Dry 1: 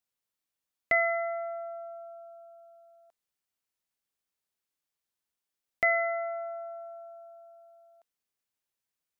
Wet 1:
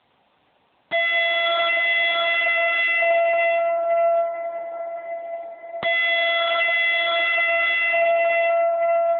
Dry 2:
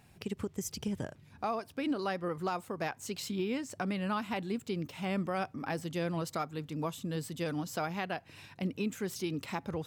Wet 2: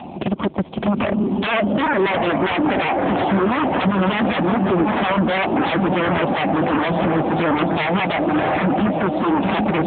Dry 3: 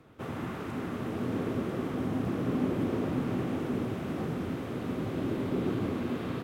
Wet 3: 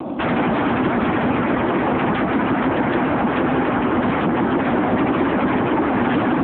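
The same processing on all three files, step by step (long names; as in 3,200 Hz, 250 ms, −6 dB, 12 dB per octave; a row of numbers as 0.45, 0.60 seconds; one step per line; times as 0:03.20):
feedback delay with all-pass diffusion 739 ms, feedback 58%, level −10 dB
downward compressor 6 to 1, threshold −39 dBFS
soft clipping −25 dBFS
resonant band-pass 510 Hz, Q 0.82
phaser with its sweep stopped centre 440 Hz, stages 6
harmonic generator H 4 −16 dB, 7 −37 dB, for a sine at −34 dBFS
sine wavefolder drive 16 dB, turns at −33.5 dBFS
AMR narrowband 6.7 kbit/s 8,000 Hz
loudness normalisation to −19 LKFS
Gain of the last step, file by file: +19.5, +20.5, +20.0 decibels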